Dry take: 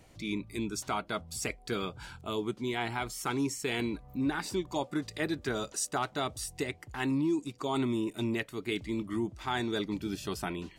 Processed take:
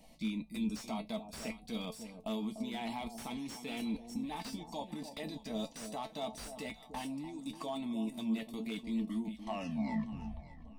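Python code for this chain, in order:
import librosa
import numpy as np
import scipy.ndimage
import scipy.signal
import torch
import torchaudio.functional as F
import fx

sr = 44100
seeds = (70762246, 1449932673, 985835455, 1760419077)

y = fx.tape_stop_end(x, sr, length_s=1.52)
y = fx.peak_eq(y, sr, hz=7000.0, db=-7.0, octaves=0.29)
y = fx.level_steps(y, sr, step_db=21)
y = fx.fixed_phaser(y, sr, hz=390.0, stages=6)
y = fx.comb_fb(y, sr, f0_hz=220.0, decay_s=0.16, harmonics='all', damping=0.0, mix_pct=80)
y = fx.echo_alternate(y, sr, ms=295, hz=860.0, feedback_pct=53, wet_db=-9)
y = fx.slew_limit(y, sr, full_power_hz=5.1)
y = F.gain(torch.from_numpy(y), 14.5).numpy()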